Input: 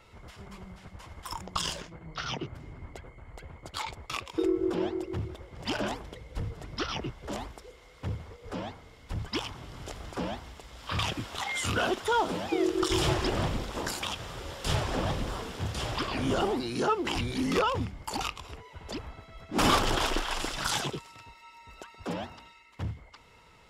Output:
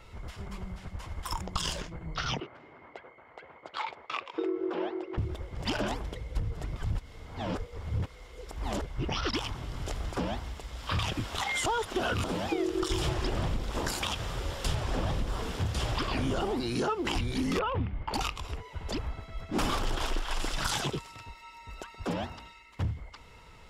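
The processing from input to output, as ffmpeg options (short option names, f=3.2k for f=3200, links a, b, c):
-filter_complex "[0:a]asettb=1/sr,asplit=3[a][b][c];[a]atrim=end=2.404[d];[b]atrim=start=2.4:end=5.18,asetpts=PTS-STARTPTS,afade=t=in:d=0.004:c=qsin,afade=t=out:st=2.776:d=0.004:c=qsin,highpass=450,lowpass=2.7k[e];[c]atrim=start=5.176[f];[d][e]acrossfade=d=0.004:c1=hsin:c2=qsin[g];[g][f]acrossfade=d=0.004:c1=qsin:c2=hsin,asettb=1/sr,asplit=3[h][i][j];[h]atrim=end=17.594[k];[i]atrim=start=17.59:end=18.14,asetpts=PTS-STARTPTS,afade=t=in:d=0.004:c=qsin,afade=t=out:st=0.546:d=0.004:c=qsin,lowpass=f=3k:w=0.5412,lowpass=f=3k:w=1.3066[l];[j]atrim=start=18.136[m];[k][l]acrossfade=d=0.004:c1=hsin:c2=qsin[n];[n][m]acrossfade=d=0.004:c1=qsin:c2=hsin,asplit=5[o][p][q][r][s];[o]atrim=end=6.762[t];[p]atrim=start=6.758:end=9.332,asetpts=PTS-STARTPTS,areverse[u];[q]atrim=start=9.328:end=11.662[v];[r]atrim=start=11.658:end=12.242,asetpts=PTS-STARTPTS,areverse[w];[s]atrim=start=12.238[x];[t][u]acrossfade=d=0.004:c1=hsin:c2=hsin[y];[y][v]acrossfade=d=0.004:c1=hsin:c2=hsin[z];[z][w]acrossfade=d=0.004:c1=hsin:c2=hsin[aa];[aa][x]acrossfade=d=0.004:c1=hsin:c2=hsin,lowshelf=f=70:g=11,acompressor=threshold=-29dB:ratio=6,volume=2.5dB"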